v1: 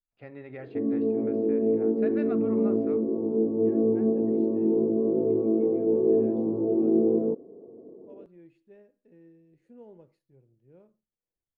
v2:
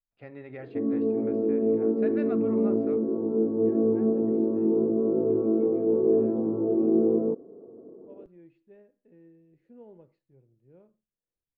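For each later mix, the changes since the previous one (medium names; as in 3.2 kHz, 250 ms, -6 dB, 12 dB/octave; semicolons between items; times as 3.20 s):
second voice: add distance through air 160 m; background: remove low-pass 1 kHz 24 dB/octave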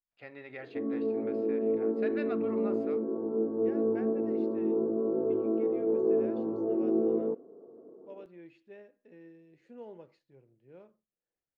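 second voice +7.5 dB; master: add tilt EQ +3.5 dB/octave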